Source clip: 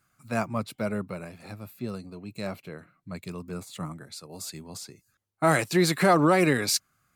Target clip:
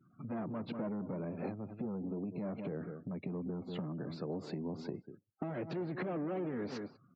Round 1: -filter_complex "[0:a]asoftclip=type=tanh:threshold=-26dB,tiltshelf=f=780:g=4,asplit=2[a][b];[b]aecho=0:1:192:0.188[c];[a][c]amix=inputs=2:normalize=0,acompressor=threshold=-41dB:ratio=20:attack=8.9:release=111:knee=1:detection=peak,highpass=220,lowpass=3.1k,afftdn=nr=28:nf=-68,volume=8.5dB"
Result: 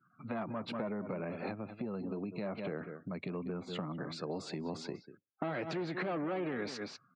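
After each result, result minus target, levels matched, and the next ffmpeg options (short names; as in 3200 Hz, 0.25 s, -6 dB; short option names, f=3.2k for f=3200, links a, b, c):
1000 Hz band +4.0 dB; soft clip: distortion -5 dB
-filter_complex "[0:a]asoftclip=type=tanh:threshold=-26dB,tiltshelf=f=780:g=11,asplit=2[a][b];[b]aecho=0:1:192:0.188[c];[a][c]amix=inputs=2:normalize=0,acompressor=threshold=-41dB:ratio=20:attack=8.9:release=111:knee=1:detection=peak,highpass=220,lowpass=3.1k,afftdn=nr=28:nf=-68,volume=8.5dB"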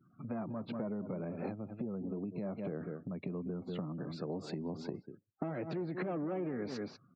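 soft clip: distortion -5 dB
-filter_complex "[0:a]asoftclip=type=tanh:threshold=-37dB,tiltshelf=f=780:g=11,asplit=2[a][b];[b]aecho=0:1:192:0.188[c];[a][c]amix=inputs=2:normalize=0,acompressor=threshold=-41dB:ratio=20:attack=8.9:release=111:knee=1:detection=peak,highpass=220,lowpass=3.1k,afftdn=nr=28:nf=-68,volume=8.5dB"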